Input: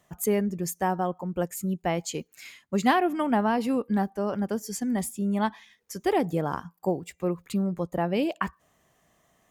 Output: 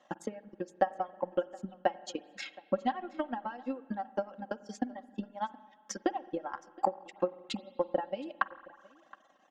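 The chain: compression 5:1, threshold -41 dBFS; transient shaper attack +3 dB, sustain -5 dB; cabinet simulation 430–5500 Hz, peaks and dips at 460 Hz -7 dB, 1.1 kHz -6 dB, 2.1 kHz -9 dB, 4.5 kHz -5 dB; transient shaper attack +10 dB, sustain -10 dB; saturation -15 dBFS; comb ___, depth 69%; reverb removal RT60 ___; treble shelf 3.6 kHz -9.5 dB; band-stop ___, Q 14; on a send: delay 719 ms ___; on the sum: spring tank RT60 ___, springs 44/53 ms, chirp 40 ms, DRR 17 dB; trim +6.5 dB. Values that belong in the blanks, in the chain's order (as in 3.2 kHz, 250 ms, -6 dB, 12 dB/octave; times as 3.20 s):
3.7 ms, 1 s, 2.4 kHz, -22.5 dB, 1.8 s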